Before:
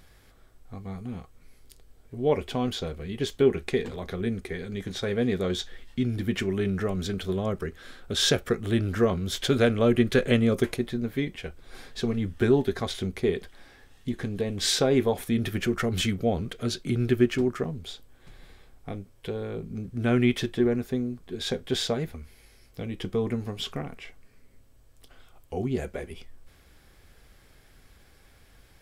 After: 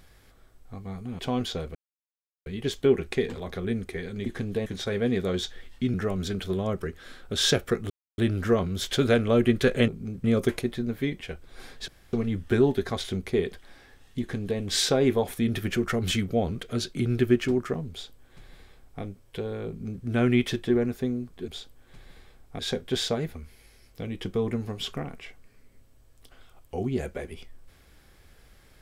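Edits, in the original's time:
1.19–2.46 cut
3.02 insert silence 0.71 s
6.1–6.73 cut
8.69 insert silence 0.28 s
12.03 insert room tone 0.25 s
14.1–14.5 copy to 4.82
17.81–18.92 copy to 21.38
19.58–19.94 copy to 10.39

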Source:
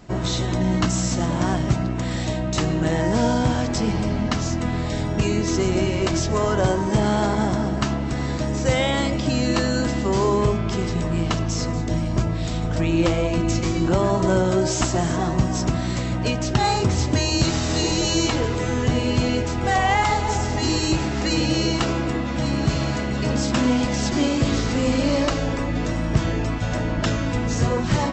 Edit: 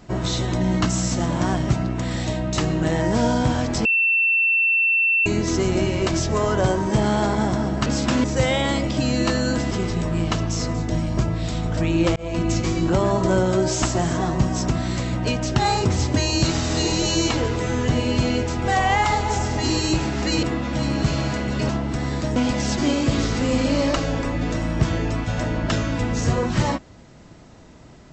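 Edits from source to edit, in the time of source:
3.85–5.26 bleep 2690 Hz -15.5 dBFS
7.86–8.53 swap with 23.32–23.7
10–10.7 cut
13.15–13.49 fade in equal-power
21.42–22.06 cut

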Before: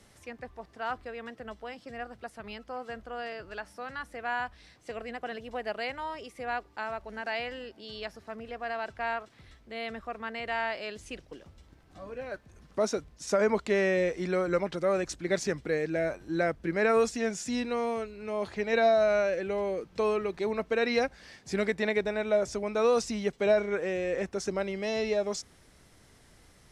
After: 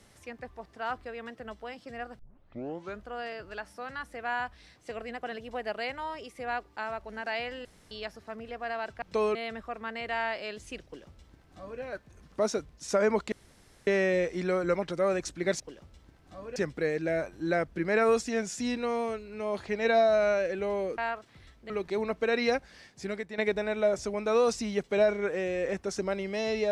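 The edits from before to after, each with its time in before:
2.19 tape start 0.85 s
7.65–7.91 room tone
9.02–9.74 swap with 19.86–20.19
11.24–12.2 copy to 15.44
13.71 insert room tone 0.55 s
21.05–21.87 fade out, to -12 dB

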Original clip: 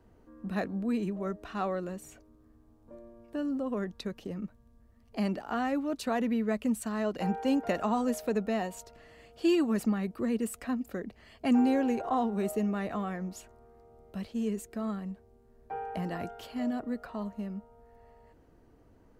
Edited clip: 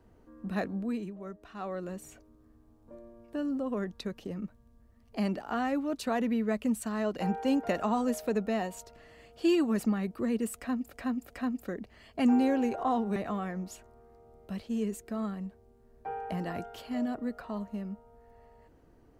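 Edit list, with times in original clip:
0.73–1.96 dip -8 dB, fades 0.38 s
10.56–10.93 loop, 3 plays
12.42–12.81 cut

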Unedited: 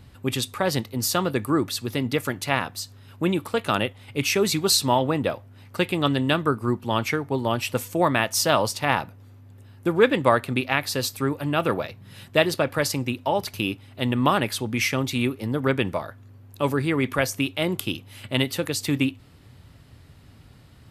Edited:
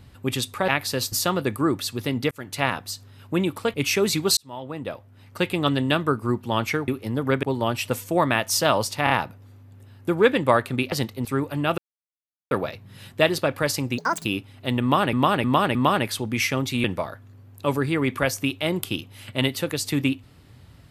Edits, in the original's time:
0.68–1.01 swap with 10.7–11.14
2.2–2.48 fade in
3.63–4.13 cut
4.76–5.88 fade in linear
8.88 stutter 0.03 s, 3 plays
11.67 insert silence 0.73 s
13.14–13.59 speed 167%
14.16–14.47 loop, 4 plays
15.25–15.8 move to 7.27

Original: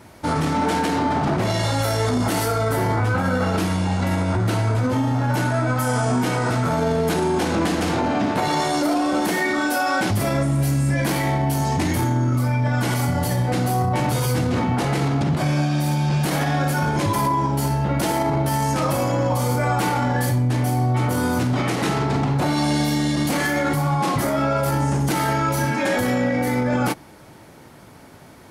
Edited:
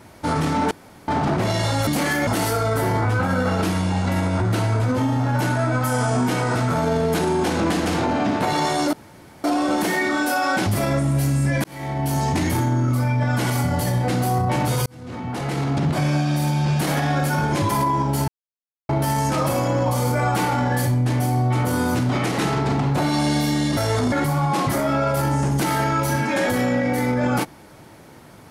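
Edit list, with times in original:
0.71–1.08 room tone
1.87–2.22 swap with 23.21–23.61
8.88 insert room tone 0.51 s
11.08–11.59 fade in
14.3–15.29 fade in
17.72–18.33 mute

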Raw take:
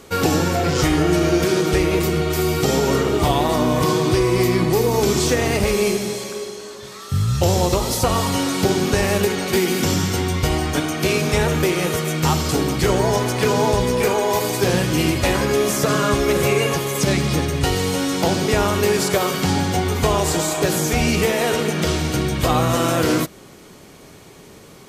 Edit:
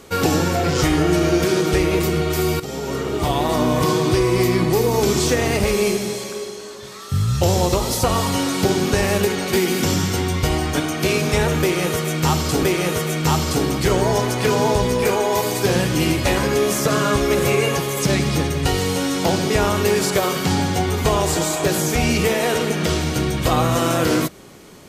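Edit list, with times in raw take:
2.6–3.61 fade in linear, from -13.5 dB
11.61–12.63 loop, 2 plays

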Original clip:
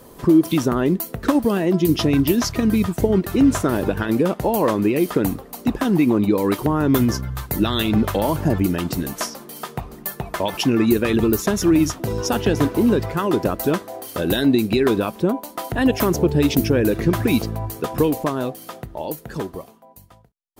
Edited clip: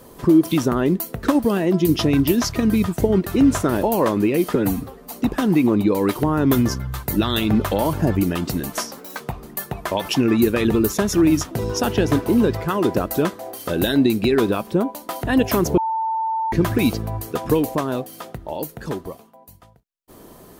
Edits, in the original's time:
3.83–4.45 cut
5.17–5.55 stretch 1.5×
9.41–9.69 speed 125%
16.26–17.01 bleep 892 Hz -19.5 dBFS

